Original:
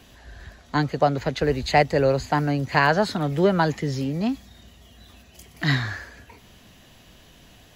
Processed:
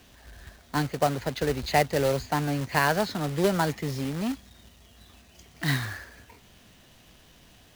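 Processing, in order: steep low-pass 7 kHz 48 dB/octave; companded quantiser 4-bit; trim -5 dB

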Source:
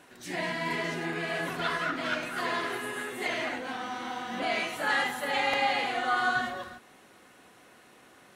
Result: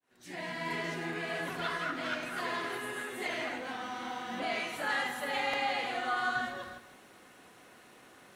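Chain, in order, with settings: fade-in on the opening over 0.72 s; in parallel at 0 dB: compression, threshold -40 dBFS, peak gain reduction 16 dB; on the sum: bit-crushed delay 156 ms, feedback 35%, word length 9-bit, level -13 dB; trim -6.5 dB

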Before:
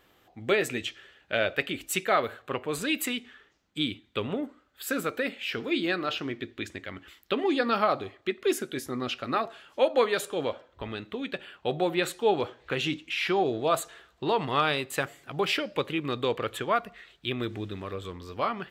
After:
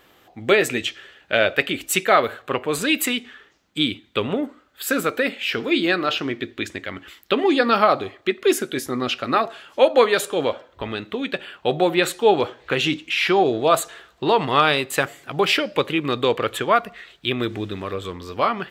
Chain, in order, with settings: bass shelf 130 Hz -5.5 dB; trim +8.5 dB

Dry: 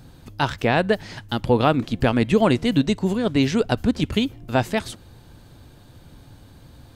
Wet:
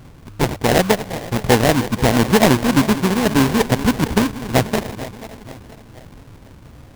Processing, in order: backward echo that repeats 240 ms, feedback 67%, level -14 dB; sample-rate reducer 1.3 kHz, jitter 20%; trim +4 dB

